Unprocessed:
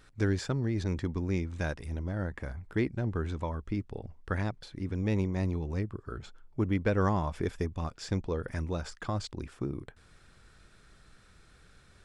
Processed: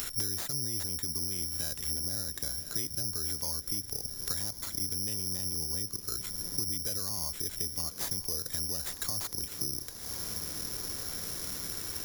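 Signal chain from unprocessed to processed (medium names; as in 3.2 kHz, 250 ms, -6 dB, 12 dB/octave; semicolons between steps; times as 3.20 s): treble shelf 4.1 kHz +9.5 dB; peak limiter -26.5 dBFS, peak gain reduction 11 dB; echo that smears into a reverb 1019 ms, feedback 69%, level -16 dB; careless resampling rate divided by 8×, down none, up zero stuff; three bands compressed up and down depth 100%; trim -8.5 dB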